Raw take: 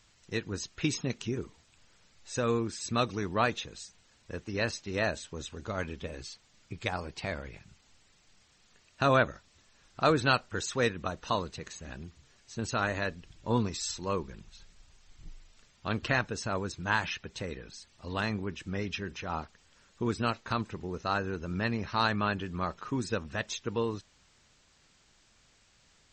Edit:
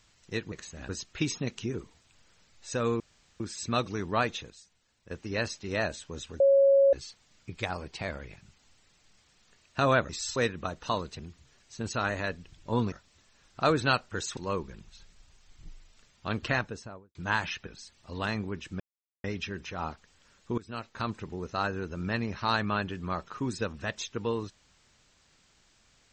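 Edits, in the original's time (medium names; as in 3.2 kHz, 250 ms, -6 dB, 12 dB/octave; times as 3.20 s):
2.63 s: insert room tone 0.40 s
3.73–4.34 s: gain -8.5 dB
5.63–6.16 s: bleep 551 Hz -17 dBFS
9.32–10.77 s: swap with 13.70–13.97 s
11.60–11.97 s: move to 0.52 s
16.11–16.75 s: studio fade out
17.27–17.62 s: delete
18.75 s: insert silence 0.44 s
20.09–20.66 s: fade in, from -20 dB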